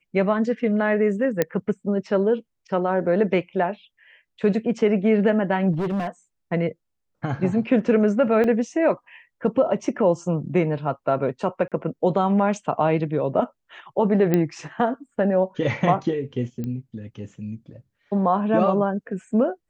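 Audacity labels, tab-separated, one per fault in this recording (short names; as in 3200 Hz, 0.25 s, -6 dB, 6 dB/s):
1.420000	1.420000	pop -7 dBFS
5.720000	6.070000	clipped -21.5 dBFS
8.440000	8.440000	gap 2.5 ms
11.680000	11.720000	gap 37 ms
14.340000	14.340000	pop -8 dBFS
16.640000	16.640000	pop -19 dBFS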